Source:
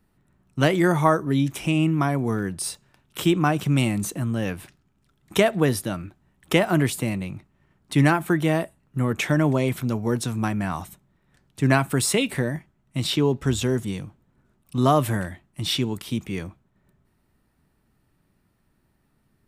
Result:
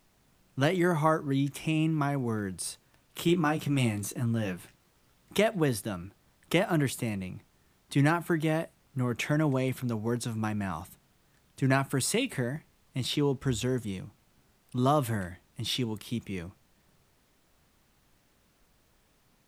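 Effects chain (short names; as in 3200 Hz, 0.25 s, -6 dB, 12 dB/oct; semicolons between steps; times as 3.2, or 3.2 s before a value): added noise pink -61 dBFS; 3.27–5.38 doubler 17 ms -6 dB; gain -6.5 dB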